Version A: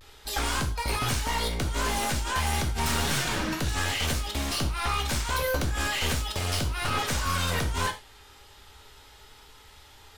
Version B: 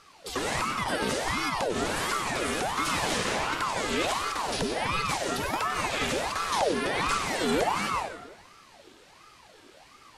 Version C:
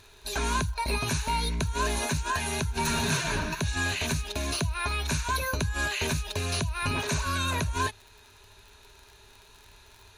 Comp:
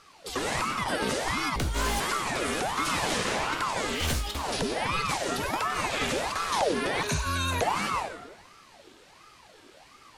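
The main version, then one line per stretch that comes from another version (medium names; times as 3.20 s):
B
1.56–2.00 s: from A
3.97–4.39 s: from A, crossfade 0.16 s
7.03–7.61 s: from C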